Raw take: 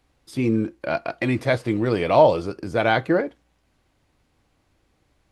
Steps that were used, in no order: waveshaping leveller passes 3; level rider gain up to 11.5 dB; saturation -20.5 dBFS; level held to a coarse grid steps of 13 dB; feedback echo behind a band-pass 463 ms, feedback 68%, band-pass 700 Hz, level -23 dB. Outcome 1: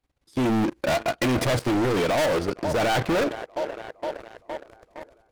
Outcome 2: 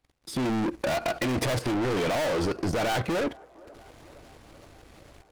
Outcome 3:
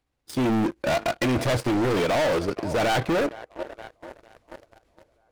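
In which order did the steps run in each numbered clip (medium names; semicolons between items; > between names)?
level held to a coarse grid > feedback echo behind a band-pass > level rider > waveshaping leveller > saturation; level rider > saturation > waveshaping leveller > level held to a coarse grid > feedback echo behind a band-pass; level rider > feedback echo behind a band-pass > waveshaping leveller > level held to a coarse grid > saturation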